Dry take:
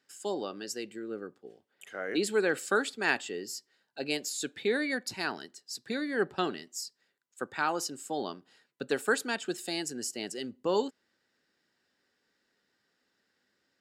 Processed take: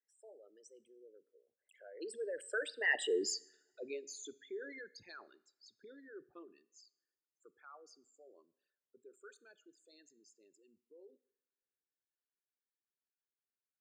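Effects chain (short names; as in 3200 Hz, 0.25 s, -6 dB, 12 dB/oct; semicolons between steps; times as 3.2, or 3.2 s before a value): formant sharpening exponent 3; Doppler pass-by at 3.18, 23 m/s, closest 2.5 m; two-slope reverb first 0.65 s, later 1.9 s, from -20 dB, DRR 18.5 dB; gain +5.5 dB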